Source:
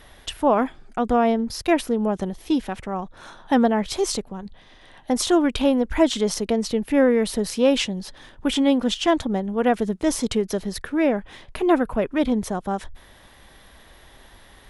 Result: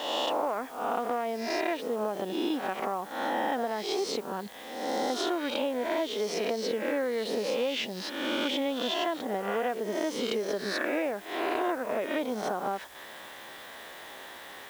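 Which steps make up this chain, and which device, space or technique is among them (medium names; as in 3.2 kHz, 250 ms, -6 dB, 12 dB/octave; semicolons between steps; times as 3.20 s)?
reverse spectral sustain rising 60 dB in 0.92 s; baby monitor (band-pass 370–3900 Hz; compression 10:1, threshold -32 dBFS, peak gain reduction 19.5 dB; white noise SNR 23 dB); trim +5 dB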